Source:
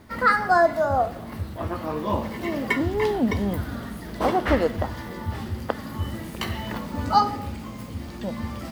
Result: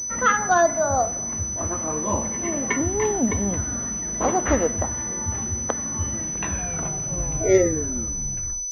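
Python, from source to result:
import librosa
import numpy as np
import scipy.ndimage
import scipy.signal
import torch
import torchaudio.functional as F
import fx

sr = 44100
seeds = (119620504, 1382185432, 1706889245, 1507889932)

y = fx.tape_stop_end(x, sr, length_s=2.55)
y = fx.pwm(y, sr, carrier_hz=6000.0)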